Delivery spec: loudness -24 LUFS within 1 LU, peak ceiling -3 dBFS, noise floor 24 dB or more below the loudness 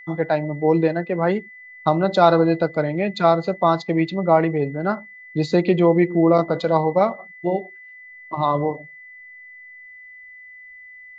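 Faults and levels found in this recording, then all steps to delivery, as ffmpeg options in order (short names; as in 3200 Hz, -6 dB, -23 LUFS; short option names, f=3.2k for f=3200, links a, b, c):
steady tone 2000 Hz; tone level -40 dBFS; loudness -20.0 LUFS; peak -2.0 dBFS; loudness target -24.0 LUFS
-> -af "bandreject=f=2k:w=30"
-af "volume=-4dB"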